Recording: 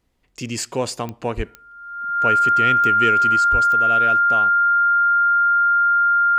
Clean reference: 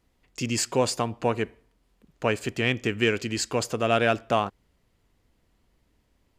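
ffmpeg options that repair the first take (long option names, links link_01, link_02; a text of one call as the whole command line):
ffmpeg -i in.wav -filter_complex "[0:a]adeclick=threshold=4,bandreject=frequency=1400:width=30,asplit=3[link_01][link_02][link_03];[link_01]afade=type=out:start_time=1.36:duration=0.02[link_04];[link_02]highpass=frequency=140:width=0.5412,highpass=frequency=140:width=1.3066,afade=type=in:start_time=1.36:duration=0.02,afade=type=out:start_time=1.48:duration=0.02[link_05];[link_03]afade=type=in:start_time=1.48:duration=0.02[link_06];[link_04][link_05][link_06]amix=inputs=3:normalize=0,asplit=3[link_07][link_08][link_09];[link_07]afade=type=out:start_time=3.51:duration=0.02[link_10];[link_08]highpass=frequency=140:width=0.5412,highpass=frequency=140:width=1.3066,afade=type=in:start_time=3.51:duration=0.02,afade=type=out:start_time=3.63:duration=0.02[link_11];[link_09]afade=type=in:start_time=3.63:duration=0.02[link_12];[link_10][link_11][link_12]amix=inputs=3:normalize=0,asetnsamples=nb_out_samples=441:pad=0,asendcmd='3.36 volume volume 5.5dB',volume=0dB" out.wav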